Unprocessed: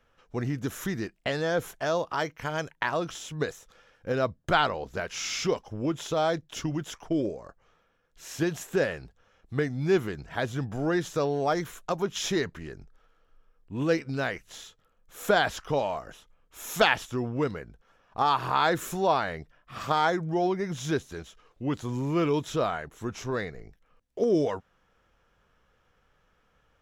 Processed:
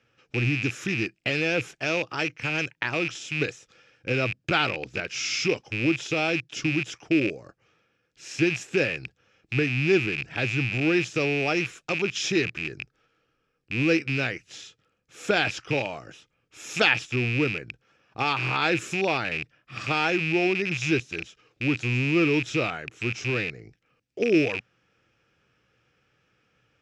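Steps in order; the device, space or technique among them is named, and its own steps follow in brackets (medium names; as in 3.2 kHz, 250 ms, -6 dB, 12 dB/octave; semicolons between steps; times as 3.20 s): car door speaker with a rattle (rattle on loud lows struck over -41 dBFS, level -23 dBFS; cabinet simulation 95–8300 Hz, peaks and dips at 120 Hz +9 dB, 320 Hz +6 dB, 660 Hz -5 dB, 1 kHz -9 dB, 2.5 kHz +9 dB, 5.1 kHz +6 dB)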